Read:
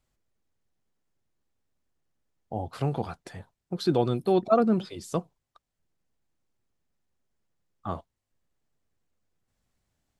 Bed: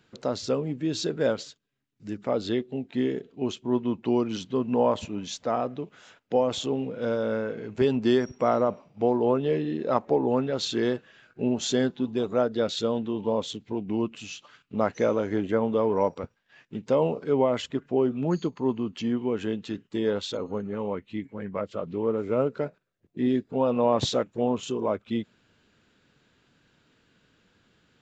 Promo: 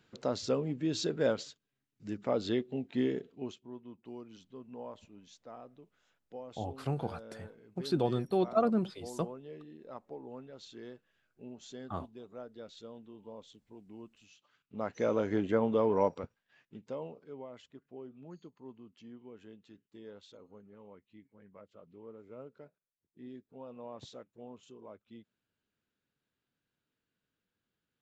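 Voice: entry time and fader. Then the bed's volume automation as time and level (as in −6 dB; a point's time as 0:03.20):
4.05 s, −6.0 dB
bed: 0:03.25 −4.5 dB
0:03.75 −22 dB
0:14.34 −22 dB
0:15.19 −4 dB
0:16.07 −4 dB
0:17.38 −23.5 dB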